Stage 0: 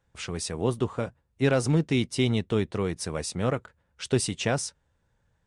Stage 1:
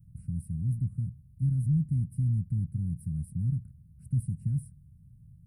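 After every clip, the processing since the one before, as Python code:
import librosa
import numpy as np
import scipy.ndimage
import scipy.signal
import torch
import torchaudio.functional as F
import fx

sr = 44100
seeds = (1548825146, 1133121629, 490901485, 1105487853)

y = fx.bin_compress(x, sr, power=0.6)
y = scipy.signal.sosfilt(scipy.signal.cheby2(4, 50, [390.0, 6800.0], 'bandstop', fs=sr, output='sos'), y)
y = F.gain(torch.from_numpy(y), 1.0).numpy()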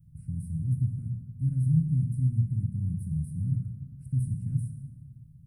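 y = fx.rev_plate(x, sr, seeds[0], rt60_s=1.7, hf_ratio=0.5, predelay_ms=0, drr_db=2.5)
y = F.gain(torch.from_numpy(y), -1.5).numpy()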